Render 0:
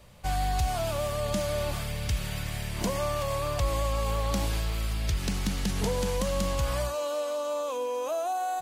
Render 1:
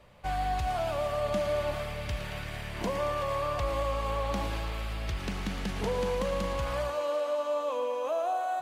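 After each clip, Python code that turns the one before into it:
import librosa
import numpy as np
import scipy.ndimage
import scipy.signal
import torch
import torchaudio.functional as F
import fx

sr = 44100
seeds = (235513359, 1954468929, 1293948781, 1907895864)

y = fx.bass_treble(x, sr, bass_db=-6, treble_db=-13)
y = fx.echo_thinned(y, sr, ms=113, feedback_pct=81, hz=210.0, wet_db=-11.5)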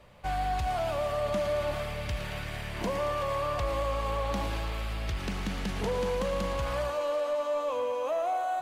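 y = 10.0 ** (-23.0 / 20.0) * np.tanh(x / 10.0 ** (-23.0 / 20.0))
y = y * 10.0 ** (1.5 / 20.0)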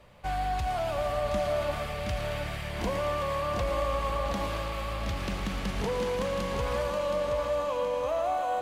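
y = fx.echo_feedback(x, sr, ms=722, feedback_pct=40, wet_db=-6.0)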